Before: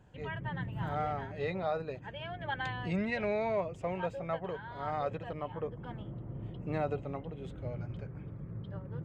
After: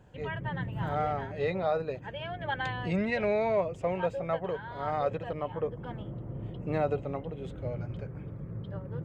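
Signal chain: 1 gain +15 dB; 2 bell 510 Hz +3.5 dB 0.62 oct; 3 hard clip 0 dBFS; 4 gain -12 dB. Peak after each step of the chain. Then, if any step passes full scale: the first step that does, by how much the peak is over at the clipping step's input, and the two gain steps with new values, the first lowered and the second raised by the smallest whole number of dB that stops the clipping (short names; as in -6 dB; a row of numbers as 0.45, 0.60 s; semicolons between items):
-7.0, -5.0, -5.0, -17.0 dBFS; no overload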